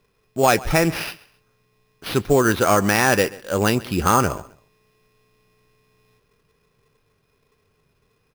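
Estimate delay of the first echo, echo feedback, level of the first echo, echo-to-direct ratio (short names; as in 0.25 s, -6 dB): 0.133 s, 30%, -20.5 dB, -20.0 dB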